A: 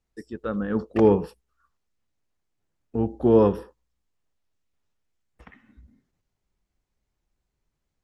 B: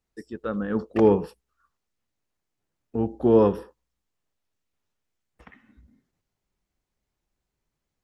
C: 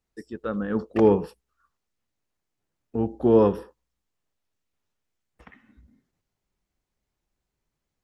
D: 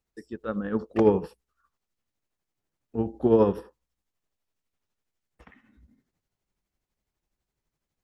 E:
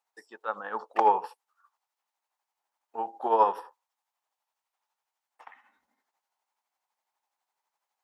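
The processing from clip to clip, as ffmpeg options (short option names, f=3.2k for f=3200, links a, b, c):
-af "lowshelf=f=89:g=-6"
-af anull
-af "tremolo=f=12:d=0.5"
-af "highpass=f=860:t=q:w=4.4"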